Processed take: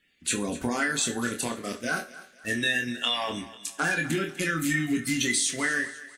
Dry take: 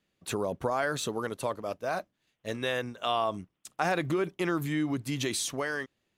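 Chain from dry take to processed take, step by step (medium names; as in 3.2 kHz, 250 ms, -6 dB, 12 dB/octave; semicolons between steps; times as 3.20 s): coarse spectral quantiser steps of 30 dB; graphic EQ 125/250/500/1000/2000/8000 Hz -8/+5/-7/-12/+10/+8 dB; compression, threshold -30 dBFS, peak gain reduction 7 dB; doubling 25 ms -5.5 dB; on a send: thinning echo 248 ms, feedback 42%, high-pass 450 Hz, level -16 dB; on the sum: two-slope reverb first 0.34 s, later 2 s, from -26 dB, DRR 6.5 dB; trim +5.5 dB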